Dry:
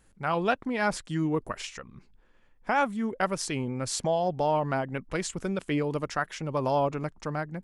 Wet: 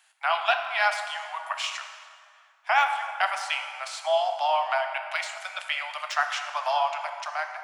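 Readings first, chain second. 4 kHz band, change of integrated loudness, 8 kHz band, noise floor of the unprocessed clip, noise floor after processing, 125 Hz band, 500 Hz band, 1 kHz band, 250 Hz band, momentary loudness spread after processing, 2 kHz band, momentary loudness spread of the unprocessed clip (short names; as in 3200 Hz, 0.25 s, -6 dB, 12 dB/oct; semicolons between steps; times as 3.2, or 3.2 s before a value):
+8.5 dB, +2.0 dB, -3.5 dB, -61 dBFS, -58 dBFS, under -40 dB, -2.0 dB, +5.0 dB, under -40 dB, 10 LU, +7.0 dB, 7 LU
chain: steep high-pass 640 Hz 96 dB/oct; de-esser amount 95%; bell 3100 Hz +9 dB 1.3 oct; AM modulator 110 Hz, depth 10%; plate-style reverb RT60 2.2 s, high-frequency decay 0.65×, DRR 5 dB; gain +3.5 dB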